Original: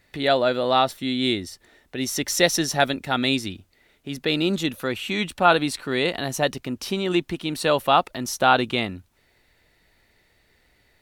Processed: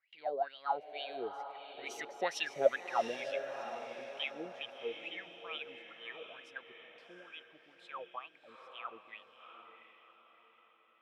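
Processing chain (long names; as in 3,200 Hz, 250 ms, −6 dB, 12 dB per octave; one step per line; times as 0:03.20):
source passing by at 0:02.32, 32 m/s, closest 21 metres
LFO wah 2.2 Hz 440–3,100 Hz, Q 11
feedback delay with all-pass diffusion 718 ms, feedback 44%, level −8 dB
level +5.5 dB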